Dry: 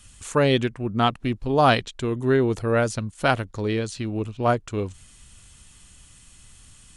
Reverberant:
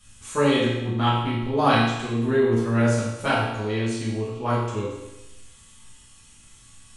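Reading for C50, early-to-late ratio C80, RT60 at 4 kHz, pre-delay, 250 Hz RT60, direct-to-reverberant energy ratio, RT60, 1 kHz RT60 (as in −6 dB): 0.5 dB, 3.5 dB, 1.0 s, 4 ms, 1.0 s, −9.0 dB, 1.0 s, 1.0 s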